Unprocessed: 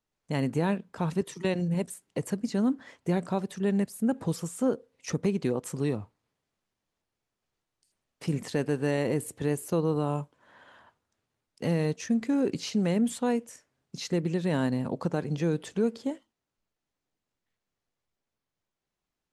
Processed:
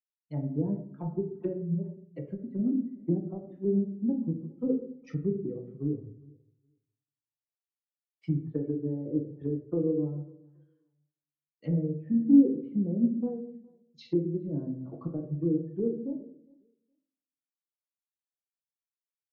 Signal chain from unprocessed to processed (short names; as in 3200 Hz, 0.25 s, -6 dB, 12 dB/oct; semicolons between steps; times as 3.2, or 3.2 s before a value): per-bin expansion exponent 2; HPF 90 Hz 12 dB/oct; treble ducked by the level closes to 330 Hz, closed at -30.5 dBFS; LPF 3000 Hz 12 dB/oct; bell 340 Hz +10.5 dB 1.5 oct; on a send: feedback echo 0.413 s, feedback 31%, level -21 dB; on the sum: flange 0.35 Hz, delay 6.1 ms, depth 2.5 ms, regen +88%; shoebox room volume 120 m³, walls mixed, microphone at 0.64 m; treble ducked by the level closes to 1400 Hz, closed at -31.5 dBFS; three-band expander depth 40%